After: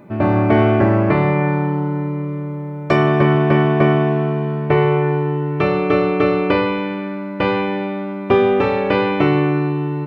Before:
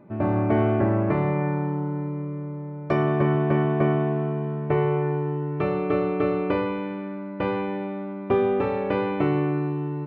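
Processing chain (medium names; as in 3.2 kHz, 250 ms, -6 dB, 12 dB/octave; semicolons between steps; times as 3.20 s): treble shelf 2.5 kHz +12 dB; trim +7 dB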